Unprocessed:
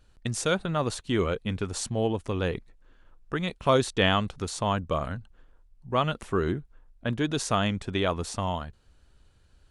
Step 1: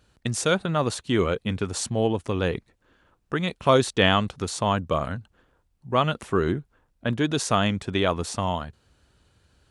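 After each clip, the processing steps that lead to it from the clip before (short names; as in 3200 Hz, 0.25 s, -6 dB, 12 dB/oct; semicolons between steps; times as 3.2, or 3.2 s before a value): HPF 76 Hz 12 dB/oct; gain +3.5 dB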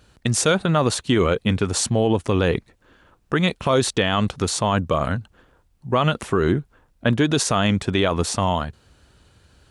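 limiter -16 dBFS, peak gain reduction 11 dB; gain +7.5 dB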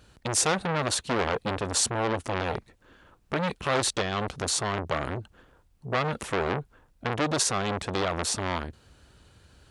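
core saturation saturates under 1600 Hz; gain -1.5 dB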